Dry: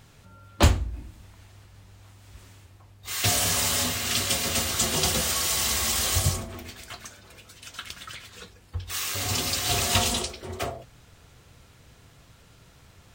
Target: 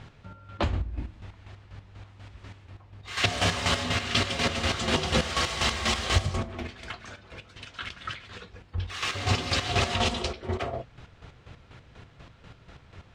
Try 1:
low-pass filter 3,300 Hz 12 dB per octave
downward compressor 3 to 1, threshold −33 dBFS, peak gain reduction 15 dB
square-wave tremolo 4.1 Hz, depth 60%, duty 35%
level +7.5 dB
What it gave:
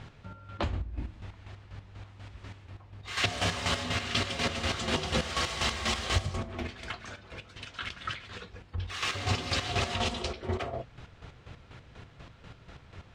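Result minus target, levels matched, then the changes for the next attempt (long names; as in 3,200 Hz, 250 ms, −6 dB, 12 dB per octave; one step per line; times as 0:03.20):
downward compressor: peak gain reduction +4.5 dB
change: downward compressor 3 to 1, threshold −26 dBFS, peak gain reduction 10.5 dB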